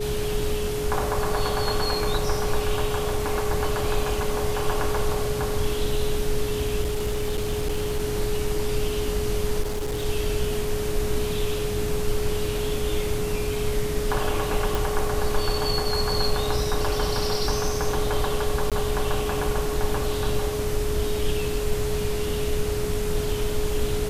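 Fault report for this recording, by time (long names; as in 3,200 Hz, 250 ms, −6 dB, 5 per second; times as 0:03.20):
whistle 420 Hz −27 dBFS
0:06.82–0:08.01: clipping −20.5 dBFS
0:09.61–0:10.06: clipping −23.5 dBFS
0:14.75: click
0:18.70–0:18.72: drop-out 17 ms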